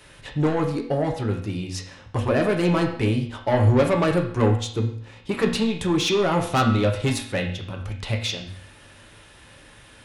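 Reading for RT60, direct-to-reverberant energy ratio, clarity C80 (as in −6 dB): 0.60 s, 1.0 dB, 11.0 dB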